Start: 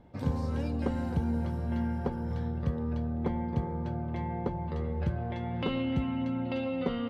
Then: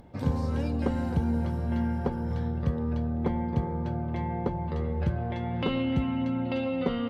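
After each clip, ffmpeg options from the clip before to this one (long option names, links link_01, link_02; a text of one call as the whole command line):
ffmpeg -i in.wav -af "acompressor=mode=upward:threshold=-51dB:ratio=2.5,volume=3dB" out.wav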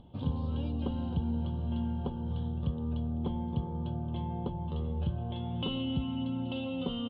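ffmpeg -i in.wav -filter_complex "[0:a]firequalizer=gain_entry='entry(160,0);entry(500,-6);entry(1000,-3);entry(2000,-21);entry(3100,10);entry(5700,-27)':delay=0.05:min_phase=1,asplit=2[link_01][link_02];[link_02]alimiter=level_in=3dB:limit=-24dB:level=0:latency=1:release=494,volume=-3dB,volume=-2.5dB[link_03];[link_01][link_03]amix=inputs=2:normalize=0,volume=-6.5dB" out.wav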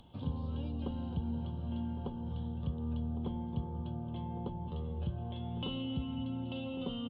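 ffmpeg -i in.wav -filter_complex "[0:a]acrossover=split=280|1000[link_01][link_02][link_03];[link_03]acompressor=mode=upward:threshold=-55dB:ratio=2.5[link_04];[link_01][link_02][link_04]amix=inputs=3:normalize=0,asplit=2[link_05][link_06];[link_06]adelay=1108,volume=-12dB,highshelf=frequency=4000:gain=-24.9[link_07];[link_05][link_07]amix=inputs=2:normalize=0,volume=-4.5dB" out.wav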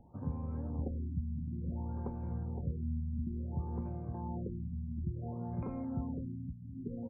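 ffmpeg -i in.wav -af "aecho=1:1:514:0.596,afftfilt=real='re*lt(b*sr/1024,250*pow(2600/250,0.5+0.5*sin(2*PI*0.57*pts/sr)))':imag='im*lt(b*sr/1024,250*pow(2600/250,0.5+0.5*sin(2*PI*0.57*pts/sr)))':win_size=1024:overlap=0.75,volume=-1dB" out.wav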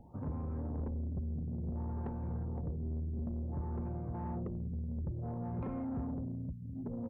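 ffmpeg -i in.wav -af "asoftclip=type=tanh:threshold=-36.5dB,volume=3.5dB" out.wav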